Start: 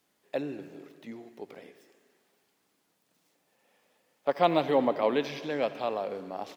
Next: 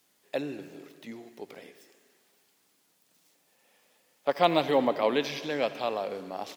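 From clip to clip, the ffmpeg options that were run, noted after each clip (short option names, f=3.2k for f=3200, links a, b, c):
-af "highshelf=f=2.6k:g=8"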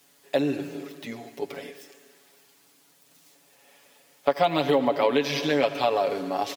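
-af "aecho=1:1:7.1:0.76,acompressor=threshold=-25dB:ratio=6,volume=7dB"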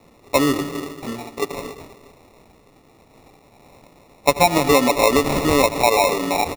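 -filter_complex "[0:a]asplit=2[a][b];[b]alimiter=limit=-15.5dB:level=0:latency=1:release=161,volume=-1dB[c];[a][c]amix=inputs=2:normalize=0,acrusher=samples=28:mix=1:aa=0.000001,volume=2.5dB"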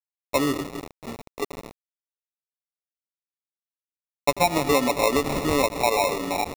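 -af "aeval=exprs='val(0)*gte(abs(val(0)),0.0473)':c=same,volume=-5.5dB"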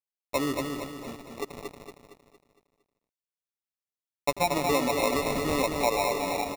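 -af "aecho=1:1:230|460|690|920|1150|1380:0.562|0.253|0.114|0.0512|0.0231|0.0104,volume=-5.5dB"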